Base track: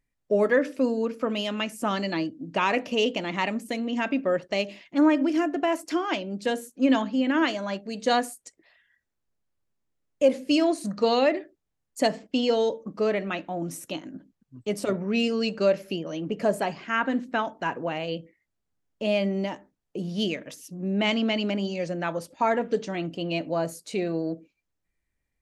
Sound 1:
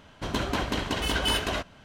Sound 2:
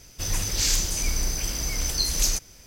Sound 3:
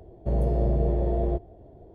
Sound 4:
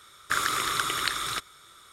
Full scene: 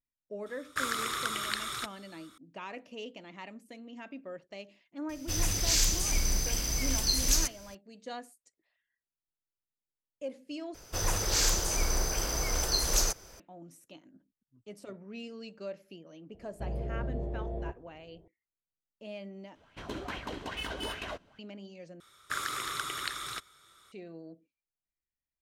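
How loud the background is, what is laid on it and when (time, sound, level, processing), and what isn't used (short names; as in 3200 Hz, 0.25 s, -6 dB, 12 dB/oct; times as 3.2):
base track -18.5 dB
0.46 add 4 -6 dB
5.09 add 2 -3 dB
10.74 replace with 2 -4 dB + band shelf 760 Hz +9 dB 2.4 oct
16.34 add 3 -11.5 dB
19.55 replace with 1 -13.5 dB + LFO bell 2.4 Hz 300–2700 Hz +11 dB
22 replace with 4 -8 dB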